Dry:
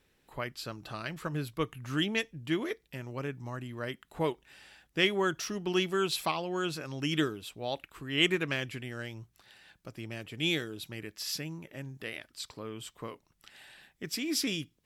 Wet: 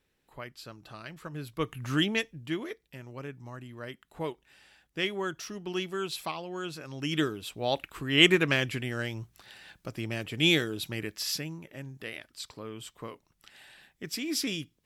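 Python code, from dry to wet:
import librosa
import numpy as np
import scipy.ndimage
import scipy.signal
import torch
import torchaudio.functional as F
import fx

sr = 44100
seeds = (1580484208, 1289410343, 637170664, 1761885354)

y = fx.gain(x, sr, db=fx.line((1.34, -5.5), (1.83, 5.5), (2.71, -4.0), (6.72, -4.0), (7.74, 6.5), (11.06, 6.5), (11.59, 0.0)))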